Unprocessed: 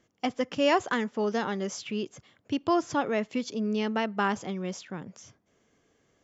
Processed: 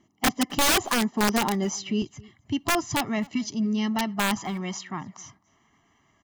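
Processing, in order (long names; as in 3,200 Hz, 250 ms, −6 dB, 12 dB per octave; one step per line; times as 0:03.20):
spectral magnitudes quantised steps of 15 dB
parametric band 390 Hz +9 dB 2.2 octaves, from 0:02.02 73 Hz, from 0:04.37 1,200 Hz
comb filter 1 ms, depth 100%
dynamic equaliser 6,200 Hz, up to +6 dB, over −51 dBFS, Q 1.4
wrap-around overflow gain 14.5 dB
slap from a distant wall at 45 metres, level −24 dB
level −1.5 dB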